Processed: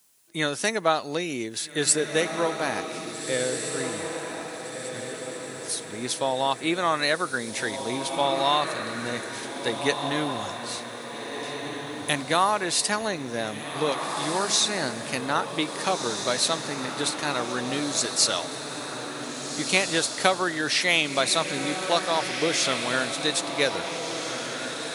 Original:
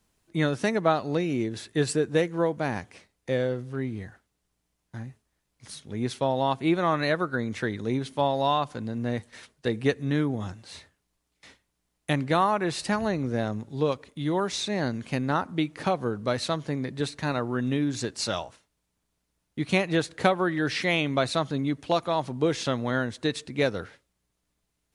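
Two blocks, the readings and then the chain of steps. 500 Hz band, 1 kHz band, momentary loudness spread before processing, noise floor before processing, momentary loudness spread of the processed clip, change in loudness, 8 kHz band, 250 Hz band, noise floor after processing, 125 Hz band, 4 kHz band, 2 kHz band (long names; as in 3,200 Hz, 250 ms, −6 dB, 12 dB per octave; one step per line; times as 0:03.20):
0.0 dB, +2.5 dB, 11 LU, −78 dBFS, 11 LU, +1.5 dB, +14.0 dB, −3.5 dB, −37 dBFS, −8.0 dB, +9.0 dB, +5.0 dB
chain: RIAA equalisation recording
feedback delay with all-pass diffusion 1,702 ms, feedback 48%, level −6 dB
level +1.5 dB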